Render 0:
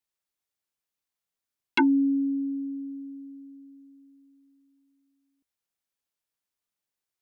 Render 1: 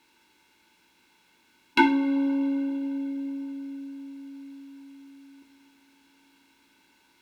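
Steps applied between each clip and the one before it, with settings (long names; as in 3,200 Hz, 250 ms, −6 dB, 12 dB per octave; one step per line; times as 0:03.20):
compressor on every frequency bin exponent 0.6
harmonic generator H 6 −34 dB, 7 −43 dB, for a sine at −13 dBFS
coupled-rooms reverb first 0.38 s, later 4.5 s, from −21 dB, DRR 0.5 dB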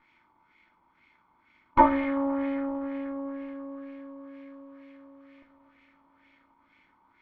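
lower of the sound and its delayed copy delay 0.9 ms
auto-filter low-pass sine 2.1 Hz 1,000–2,300 Hz
level −1 dB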